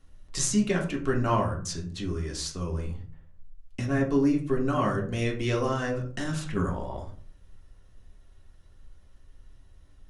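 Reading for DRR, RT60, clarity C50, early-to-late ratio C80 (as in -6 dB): -1.5 dB, 0.45 s, 9.5 dB, 14.0 dB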